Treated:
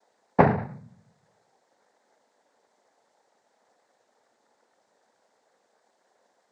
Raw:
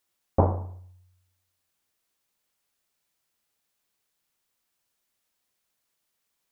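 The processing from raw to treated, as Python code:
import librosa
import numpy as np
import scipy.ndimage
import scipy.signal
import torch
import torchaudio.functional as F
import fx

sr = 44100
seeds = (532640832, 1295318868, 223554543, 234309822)

y = fx.dmg_noise_band(x, sr, seeds[0], low_hz=420.0, high_hz=1000.0, level_db=-75.0)
y = fx.noise_vocoder(y, sr, seeds[1], bands=6)
y = y * librosa.db_to_amplitude(5.5)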